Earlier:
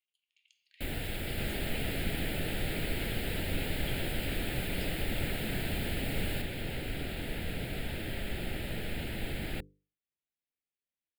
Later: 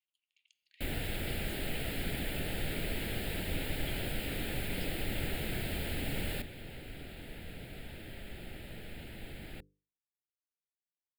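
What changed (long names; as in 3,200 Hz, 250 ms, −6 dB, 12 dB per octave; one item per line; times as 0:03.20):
speech: send −9.0 dB
second sound −9.5 dB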